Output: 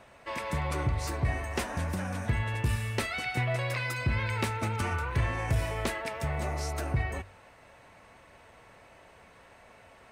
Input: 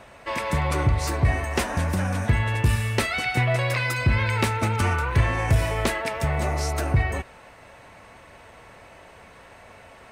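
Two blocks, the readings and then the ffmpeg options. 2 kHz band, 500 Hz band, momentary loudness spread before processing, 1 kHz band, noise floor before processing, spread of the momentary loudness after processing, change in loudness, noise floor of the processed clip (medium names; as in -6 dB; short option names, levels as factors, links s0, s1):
-7.5 dB, -7.5 dB, 4 LU, -7.5 dB, -48 dBFS, 4 LU, -7.5 dB, -56 dBFS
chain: -af "bandreject=f=47.58:t=h:w=4,bandreject=f=95.16:t=h:w=4,volume=0.422"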